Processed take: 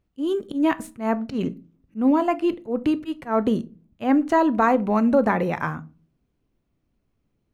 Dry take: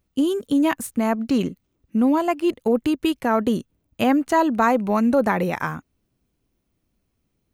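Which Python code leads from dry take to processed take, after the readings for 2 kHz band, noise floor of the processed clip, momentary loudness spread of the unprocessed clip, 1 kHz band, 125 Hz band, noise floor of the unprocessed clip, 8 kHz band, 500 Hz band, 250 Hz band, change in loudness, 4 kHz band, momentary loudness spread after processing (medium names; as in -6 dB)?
-2.0 dB, -73 dBFS, 8 LU, -1.0 dB, -0.5 dB, -74 dBFS, under -10 dB, -1.0 dB, -1.5 dB, -1.5 dB, -7.0 dB, 10 LU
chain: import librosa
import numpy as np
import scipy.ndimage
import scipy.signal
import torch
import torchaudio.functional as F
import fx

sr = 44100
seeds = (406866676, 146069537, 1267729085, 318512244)

y = fx.lowpass(x, sr, hz=2500.0, slope=6)
y = fx.auto_swell(y, sr, attack_ms=130.0)
y = fx.room_shoebox(y, sr, seeds[0], volume_m3=200.0, walls='furnished', distance_m=0.34)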